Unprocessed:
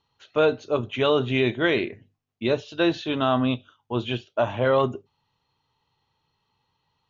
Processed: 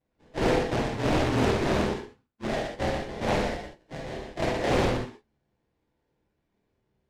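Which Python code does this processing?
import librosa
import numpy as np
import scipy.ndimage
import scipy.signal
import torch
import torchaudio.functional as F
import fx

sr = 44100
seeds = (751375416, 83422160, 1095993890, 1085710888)

y = fx.partial_stretch(x, sr, pct=110)
y = fx.steep_highpass(y, sr, hz=530.0, slope=48, at=(2.47, 4.72))
y = fx.sample_hold(y, sr, seeds[0], rate_hz=1300.0, jitter_pct=20)
y = (np.mod(10.0 ** (18.0 / 20.0) * y + 1.0, 2.0) - 1.0) / 10.0 ** (18.0 / 20.0)
y = fx.air_absorb(y, sr, metres=77.0)
y = fx.doubler(y, sr, ms=26.0, db=-14)
y = fx.echo_multitap(y, sr, ms=(50, 120), db=(-5.5, -4.5))
y = fx.rev_gated(y, sr, seeds[1], gate_ms=100, shape='flat', drr_db=-2.0)
y = fx.doppler_dist(y, sr, depth_ms=0.77)
y = y * librosa.db_to_amplitude(-4.5)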